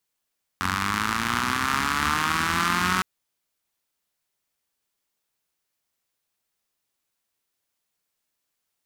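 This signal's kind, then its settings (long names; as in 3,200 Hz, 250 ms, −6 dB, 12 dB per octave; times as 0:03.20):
pulse-train model of a four-cylinder engine, changing speed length 2.41 s, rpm 2,700, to 5,600, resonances 88/210/1,200 Hz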